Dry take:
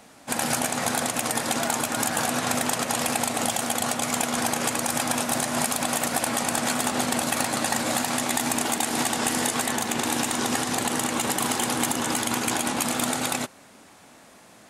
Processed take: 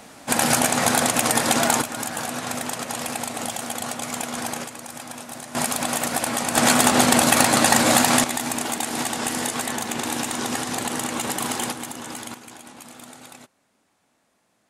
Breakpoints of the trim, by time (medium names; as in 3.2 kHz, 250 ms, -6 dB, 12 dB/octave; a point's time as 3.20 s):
+6 dB
from 1.82 s -3.5 dB
from 4.64 s -11 dB
from 5.55 s +1 dB
from 6.56 s +8.5 dB
from 8.24 s -1 dB
from 11.72 s -8.5 dB
from 12.34 s -17 dB